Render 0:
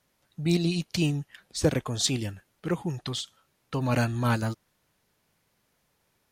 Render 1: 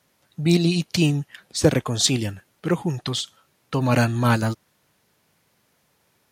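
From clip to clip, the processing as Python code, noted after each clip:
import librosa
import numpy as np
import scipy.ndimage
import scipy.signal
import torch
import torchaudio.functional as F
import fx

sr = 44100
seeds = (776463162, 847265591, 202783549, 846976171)

y = scipy.signal.sosfilt(scipy.signal.butter(2, 79.0, 'highpass', fs=sr, output='sos'), x)
y = F.gain(torch.from_numpy(y), 6.5).numpy()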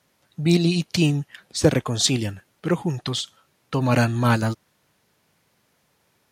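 y = fx.high_shelf(x, sr, hz=11000.0, db=-4.0)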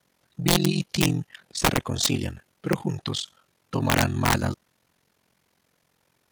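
y = (np.mod(10.0 ** (9.5 / 20.0) * x + 1.0, 2.0) - 1.0) / 10.0 ** (9.5 / 20.0)
y = y * np.sin(2.0 * np.pi * 22.0 * np.arange(len(y)) / sr)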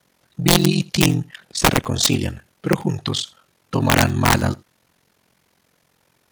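y = x + 10.0 ** (-24.0 / 20.0) * np.pad(x, (int(81 * sr / 1000.0), 0))[:len(x)]
y = F.gain(torch.from_numpy(y), 6.0).numpy()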